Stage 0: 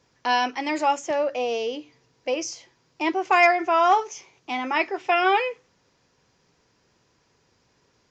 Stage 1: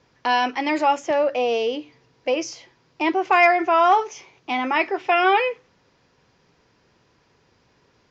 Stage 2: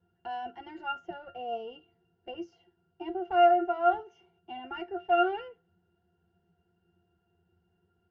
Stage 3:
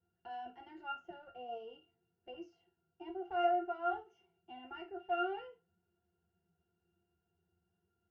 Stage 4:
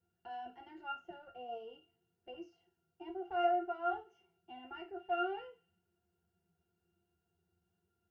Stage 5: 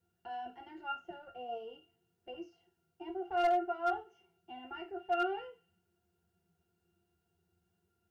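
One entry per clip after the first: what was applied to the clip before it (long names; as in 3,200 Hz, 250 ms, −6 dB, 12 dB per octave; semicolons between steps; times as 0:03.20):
low-pass filter 4,500 Hz 12 dB per octave; in parallel at −3 dB: brickwall limiter −19 dBFS, peak gain reduction 11.5 dB
harmonic generator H 4 −20 dB, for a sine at −6 dBFS; resonances in every octave F, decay 0.15 s
flanger 0.5 Hz, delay 8.4 ms, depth 6.4 ms, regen −67%; convolution reverb, pre-delay 15 ms, DRR 9.5 dB; level −5.5 dB
delay with a high-pass on its return 96 ms, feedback 51%, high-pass 2,900 Hz, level −19 dB
hard clipping −27 dBFS, distortion −18 dB; level +3 dB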